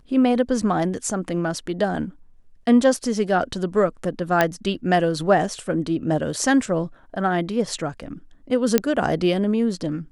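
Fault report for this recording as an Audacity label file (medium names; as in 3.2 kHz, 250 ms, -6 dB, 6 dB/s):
4.410000	4.410000	pop -4 dBFS
8.780000	8.780000	pop -2 dBFS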